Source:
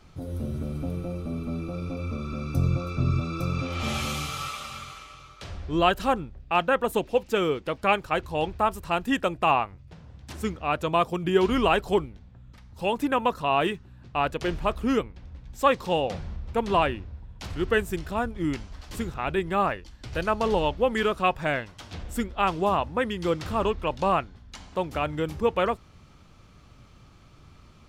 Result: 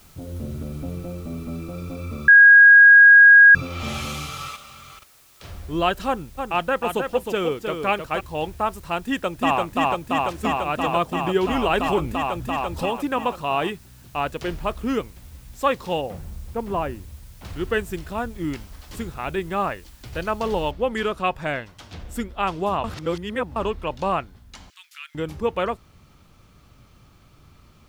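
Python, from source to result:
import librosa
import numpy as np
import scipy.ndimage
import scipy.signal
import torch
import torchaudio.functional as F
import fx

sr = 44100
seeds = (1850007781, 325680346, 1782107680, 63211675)

y = fx.level_steps(x, sr, step_db=22, at=(4.56, 5.44))
y = fx.echo_single(y, sr, ms=311, db=-6.0, at=(6.37, 8.19), fade=0.02)
y = fx.echo_throw(y, sr, start_s=9.03, length_s=0.58, ms=340, feedback_pct=85, wet_db=-0.5)
y = fx.env_flatten(y, sr, amount_pct=50, at=(11.73, 12.86))
y = fx.spacing_loss(y, sr, db_at_10k=40, at=(16.01, 17.45))
y = fx.noise_floor_step(y, sr, seeds[0], at_s=20.71, before_db=-54, after_db=-70, tilt_db=0.0)
y = fx.bessel_highpass(y, sr, hz=2600.0, order=8, at=(24.7, 25.15))
y = fx.edit(y, sr, fx.bleep(start_s=2.28, length_s=1.27, hz=1640.0, db=-6.0),
    fx.reverse_span(start_s=22.84, length_s=0.72), tone=tone)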